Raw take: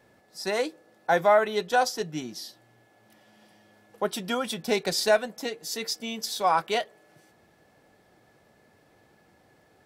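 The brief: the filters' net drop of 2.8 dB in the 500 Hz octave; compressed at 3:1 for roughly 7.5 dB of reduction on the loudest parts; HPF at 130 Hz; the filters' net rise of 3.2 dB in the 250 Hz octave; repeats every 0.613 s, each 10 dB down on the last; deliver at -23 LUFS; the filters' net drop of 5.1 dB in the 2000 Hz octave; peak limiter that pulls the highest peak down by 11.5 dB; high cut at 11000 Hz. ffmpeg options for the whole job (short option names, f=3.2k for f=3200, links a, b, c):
-af "highpass=130,lowpass=11k,equalizer=f=250:t=o:g=5.5,equalizer=f=500:t=o:g=-4.5,equalizer=f=2k:t=o:g=-7,acompressor=threshold=-29dB:ratio=3,alimiter=level_in=5dB:limit=-24dB:level=0:latency=1,volume=-5dB,aecho=1:1:613|1226|1839|2452:0.316|0.101|0.0324|0.0104,volume=16dB"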